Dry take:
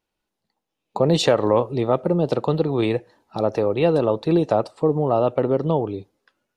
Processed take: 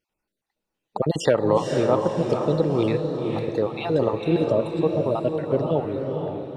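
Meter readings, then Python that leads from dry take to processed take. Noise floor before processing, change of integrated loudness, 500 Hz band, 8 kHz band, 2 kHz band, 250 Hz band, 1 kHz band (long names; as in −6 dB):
−82 dBFS, −2.5 dB, −2.0 dB, can't be measured, −1.5 dB, −2.0 dB, −3.0 dB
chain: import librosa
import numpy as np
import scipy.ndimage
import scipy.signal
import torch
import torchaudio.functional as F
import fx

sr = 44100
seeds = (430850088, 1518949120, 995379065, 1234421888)

p1 = fx.spec_dropout(x, sr, seeds[0], share_pct=37)
p2 = p1 + fx.echo_diffused(p1, sr, ms=493, feedback_pct=44, wet_db=-4.0, dry=0)
y = p2 * librosa.db_to_amplitude(-1.5)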